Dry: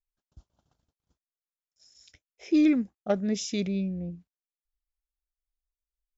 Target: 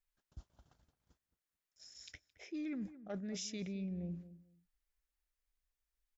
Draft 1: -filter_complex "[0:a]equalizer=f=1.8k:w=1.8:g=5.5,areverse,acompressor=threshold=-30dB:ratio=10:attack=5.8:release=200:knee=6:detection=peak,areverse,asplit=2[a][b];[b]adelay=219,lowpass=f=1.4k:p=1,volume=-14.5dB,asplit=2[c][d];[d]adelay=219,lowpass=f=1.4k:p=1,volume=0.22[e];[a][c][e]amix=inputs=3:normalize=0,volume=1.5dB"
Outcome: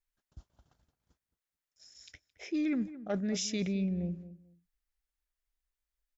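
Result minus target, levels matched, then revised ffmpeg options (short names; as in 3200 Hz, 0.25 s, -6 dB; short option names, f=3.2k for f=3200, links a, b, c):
compressor: peak gain reduction -10 dB
-filter_complex "[0:a]equalizer=f=1.8k:w=1.8:g=5.5,areverse,acompressor=threshold=-41dB:ratio=10:attack=5.8:release=200:knee=6:detection=peak,areverse,asplit=2[a][b];[b]adelay=219,lowpass=f=1.4k:p=1,volume=-14.5dB,asplit=2[c][d];[d]adelay=219,lowpass=f=1.4k:p=1,volume=0.22[e];[a][c][e]amix=inputs=3:normalize=0,volume=1.5dB"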